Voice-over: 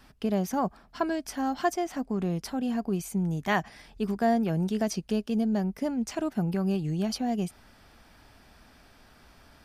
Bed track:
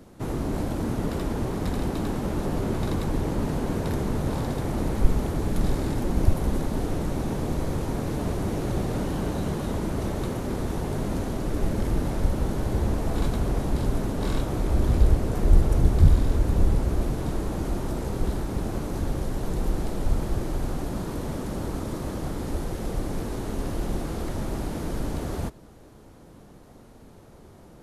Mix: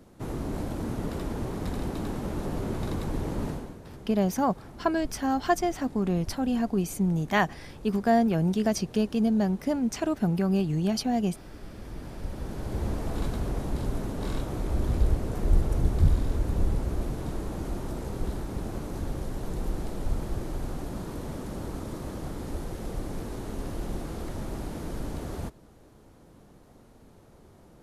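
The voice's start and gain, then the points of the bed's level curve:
3.85 s, +2.5 dB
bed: 0:03.49 −4.5 dB
0:03.78 −18.5 dB
0:11.63 −18.5 dB
0:12.86 −5 dB

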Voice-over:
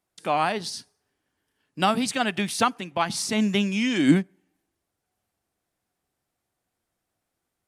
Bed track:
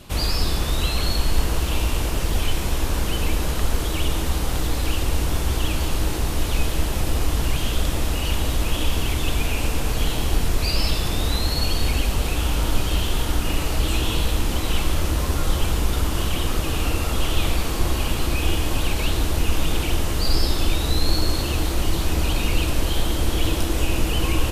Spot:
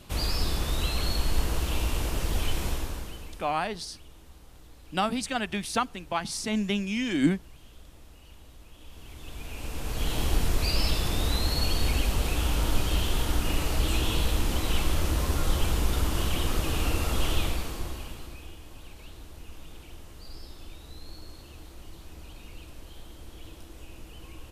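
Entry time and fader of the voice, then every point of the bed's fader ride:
3.15 s, −5.0 dB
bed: 0:02.68 −6 dB
0:03.60 −28.5 dB
0:08.74 −28.5 dB
0:10.20 −4.5 dB
0:17.32 −4.5 dB
0:18.54 −24 dB

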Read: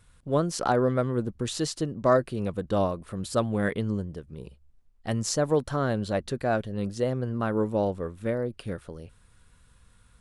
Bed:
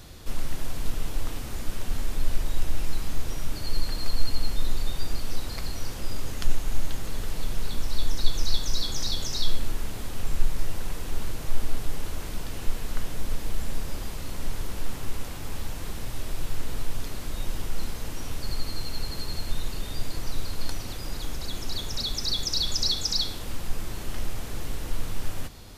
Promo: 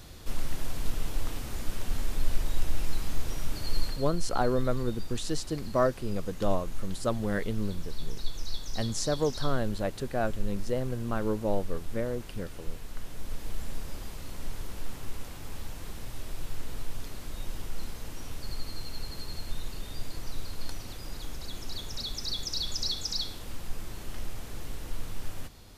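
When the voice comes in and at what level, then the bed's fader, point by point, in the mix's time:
3.70 s, −4.0 dB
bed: 0:03.85 −2 dB
0:04.06 −10 dB
0:12.93 −10 dB
0:13.50 −6 dB

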